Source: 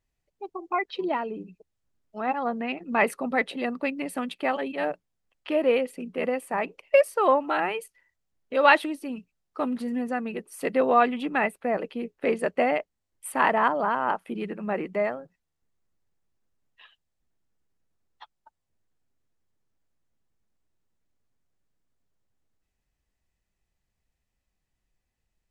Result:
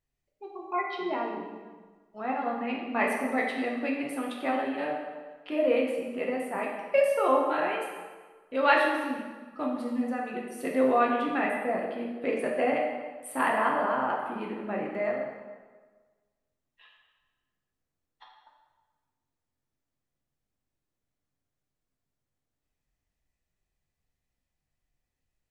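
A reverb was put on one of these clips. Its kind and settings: plate-style reverb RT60 1.4 s, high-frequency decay 0.8×, DRR -2 dB; trim -7 dB

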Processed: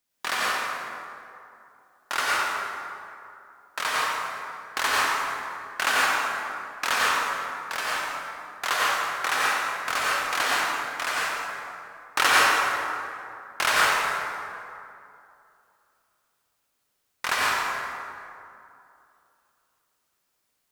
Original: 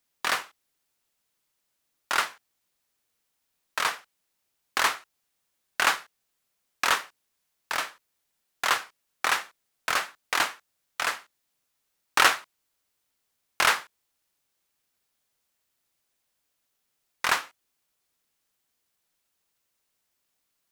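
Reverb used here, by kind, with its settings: plate-style reverb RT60 2.7 s, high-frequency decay 0.5×, pre-delay 80 ms, DRR -6.5 dB; trim -3 dB

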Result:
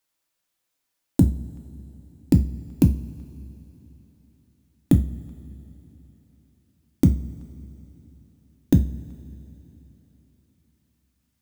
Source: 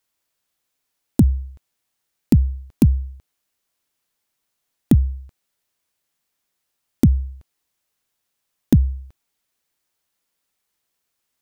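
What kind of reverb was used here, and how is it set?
two-slope reverb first 0.3 s, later 3.7 s, from -22 dB, DRR 4.5 dB; trim -3 dB

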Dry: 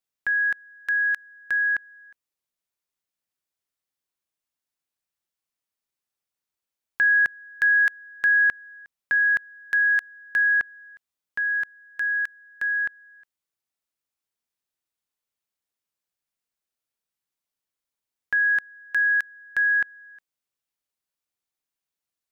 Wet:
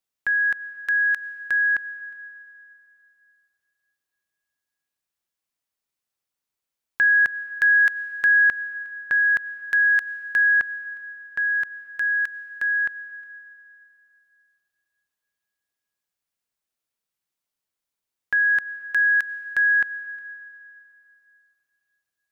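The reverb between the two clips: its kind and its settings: plate-style reverb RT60 3.1 s, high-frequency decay 0.95×, pre-delay 80 ms, DRR 16.5 dB; trim +1.5 dB

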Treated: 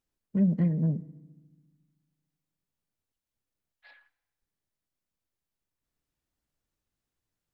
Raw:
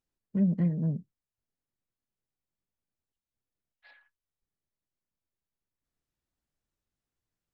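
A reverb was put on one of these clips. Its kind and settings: FDN reverb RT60 1.2 s, low-frequency decay 1.55×, high-frequency decay 0.8×, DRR 17 dB; trim +2 dB

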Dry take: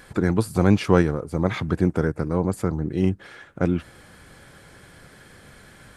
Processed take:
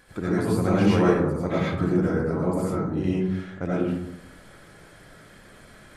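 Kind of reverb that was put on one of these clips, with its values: algorithmic reverb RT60 0.85 s, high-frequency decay 0.4×, pre-delay 50 ms, DRR -8 dB; trim -9 dB

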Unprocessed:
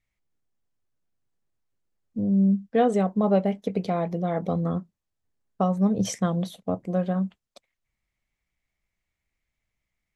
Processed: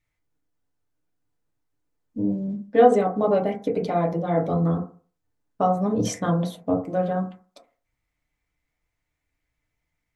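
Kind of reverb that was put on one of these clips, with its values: FDN reverb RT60 0.4 s, low-frequency decay 0.9×, high-frequency decay 0.25×, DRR -1 dB

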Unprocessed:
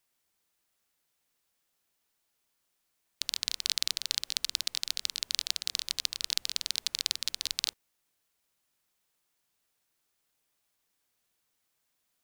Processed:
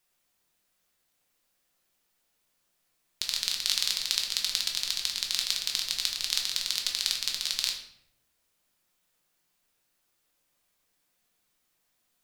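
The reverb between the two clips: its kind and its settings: simulated room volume 160 m³, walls mixed, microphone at 0.94 m; trim +1 dB

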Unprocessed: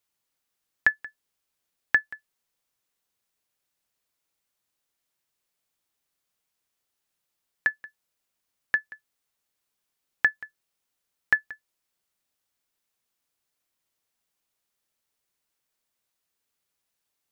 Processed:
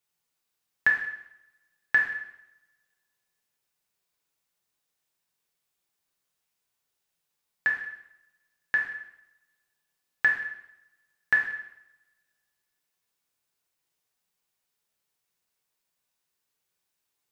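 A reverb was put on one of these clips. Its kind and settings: two-slope reverb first 0.75 s, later 1.9 s, from -27 dB, DRR -2 dB; trim -4 dB

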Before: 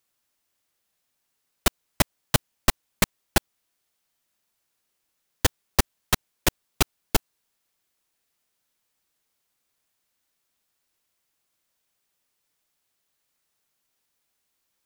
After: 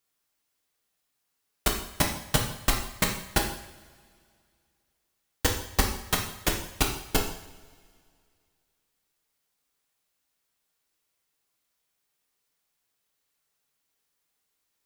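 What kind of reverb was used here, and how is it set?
two-slope reverb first 0.66 s, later 2.3 s, from -19 dB, DRR 0 dB; trim -4.5 dB

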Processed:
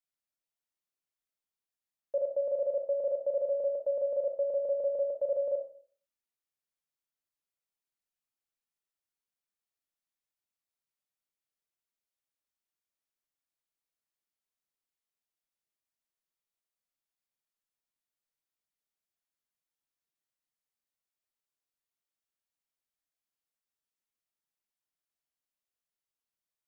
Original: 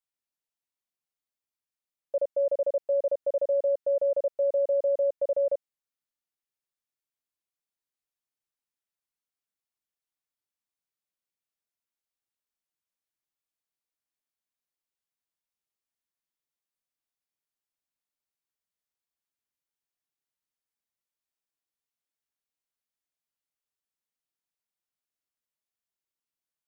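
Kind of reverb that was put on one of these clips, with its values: algorithmic reverb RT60 0.46 s, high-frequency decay 0.55×, pre-delay 5 ms, DRR 6 dB; trim -3.5 dB

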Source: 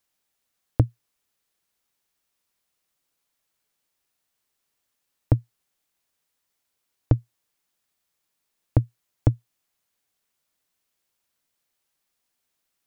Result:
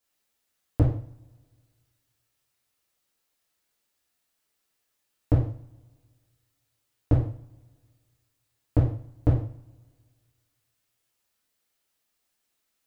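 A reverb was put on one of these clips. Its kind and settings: two-slope reverb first 0.49 s, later 1.8 s, from -25 dB, DRR -6.5 dB; trim -6.5 dB

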